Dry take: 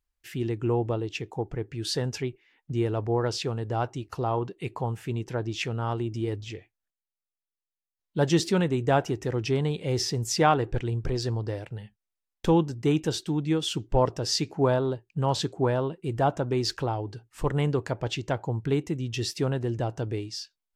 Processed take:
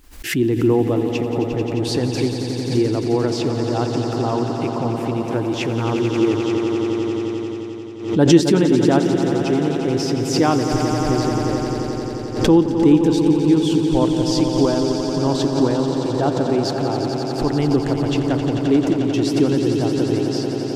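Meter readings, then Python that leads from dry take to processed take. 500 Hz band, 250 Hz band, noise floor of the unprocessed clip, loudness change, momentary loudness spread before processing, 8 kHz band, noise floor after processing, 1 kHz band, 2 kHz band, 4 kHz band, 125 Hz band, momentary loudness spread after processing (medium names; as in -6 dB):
+9.0 dB, +13.5 dB, under -85 dBFS, +9.0 dB, 9 LU, +5.5 dB, -26 dBFS, +5.0 dB, +6.0 dB, +5.5 dB, +6.0 dB, 8 LU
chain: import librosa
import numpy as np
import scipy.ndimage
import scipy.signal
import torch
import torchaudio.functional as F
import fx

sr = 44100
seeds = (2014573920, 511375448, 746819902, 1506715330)

p1 = fx.echo_swell(x, sr, ms=88, loudest=5, wet_db=-9.5)
p2 = fx.rider(p1, sr, range_db=10, speed_s=2.0)
p3 = p1 + (p2 * 10.0 ** (3.0 / 20.0))
p4 = fx.peak_eq(p3, sr, hz=290.0, db=12.0, octaves=0.73)
p5 = fx.pre_swell(p4, sr, db_per_s=94.0)
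y = p5 * 10.0 ** (-6.5 / 20.0)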